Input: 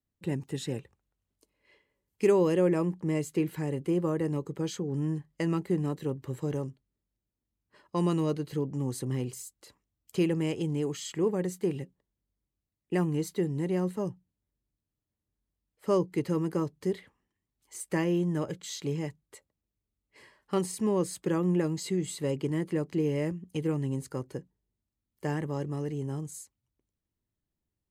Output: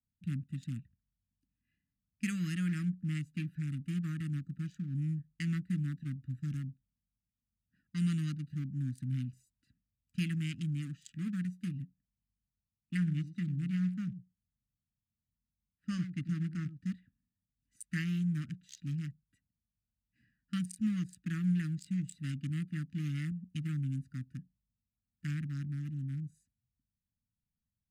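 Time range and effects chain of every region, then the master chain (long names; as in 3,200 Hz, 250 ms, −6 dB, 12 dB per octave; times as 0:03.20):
0:12.97–0:16.93: high-frequency loss of the air 53 metres + single-tap delay 94 ms −10.5 dB
whole clip: adaptive Wiener filter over 41 samples; inverse Chebyshev band-stop filter 370–1,000 Hz, stop band 40 dB; low-shelf EQ 84 Hz −5.5 dB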